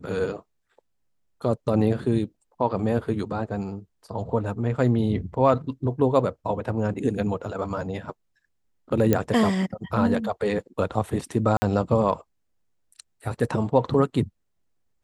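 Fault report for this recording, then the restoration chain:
9.13 pop -7 dBFS
11.57–11.62 gap 50 ms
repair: de-click; interpolate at 11.57, 50 ms

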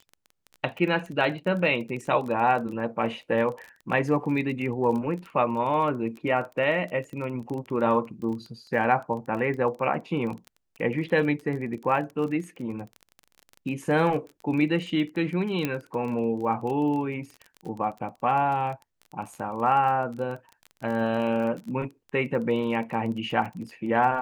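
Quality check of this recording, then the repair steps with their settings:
crackle 25/s -33 dBFS
15.65 pop -13 dBFS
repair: de-click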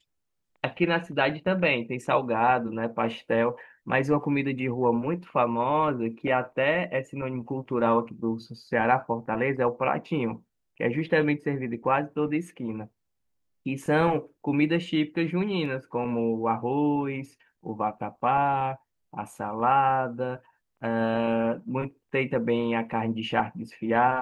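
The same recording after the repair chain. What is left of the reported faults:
15.65 pop

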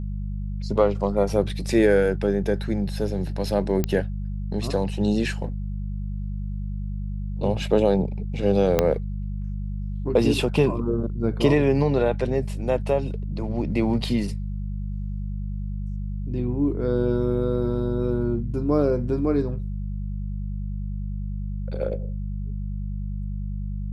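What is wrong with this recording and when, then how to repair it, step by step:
hum 50 Hz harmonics 4 -29 dBFS
3.84 pop -10 dBFS
8.79 pop -5 dBFS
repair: de-click; de-hum 50 Hz, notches 4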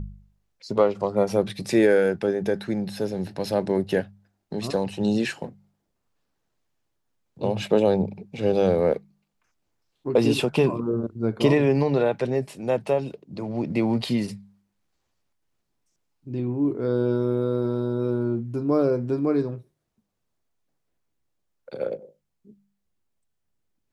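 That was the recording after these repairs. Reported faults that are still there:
8.79 pop

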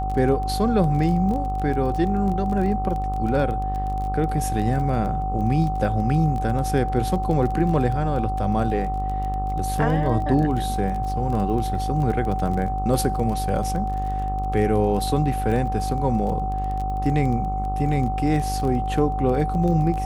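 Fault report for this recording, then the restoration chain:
buzz 50 Hz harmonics 27 -27 dBFS
crackle 21/s -28 dBFS
tone 760 Hz -26 dBFS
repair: de-click; de-hum 50 Hz, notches 27; notch 760 Hz, Q 30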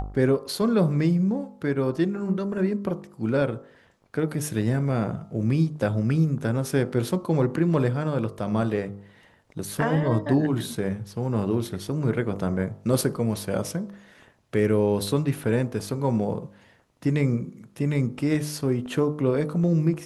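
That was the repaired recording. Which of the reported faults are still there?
none

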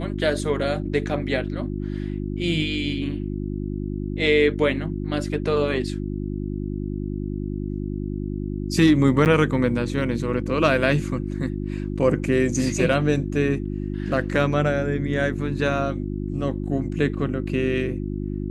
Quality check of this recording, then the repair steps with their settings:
hum 50 Hz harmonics 7 -28 dBFS
9.25–9.26 gap 9 ms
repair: de-hum 50 Hz, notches 7; interpolate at 9.25, 9 ms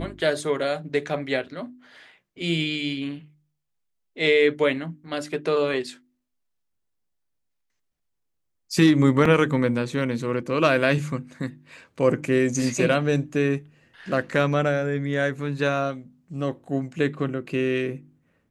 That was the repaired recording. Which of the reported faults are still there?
none

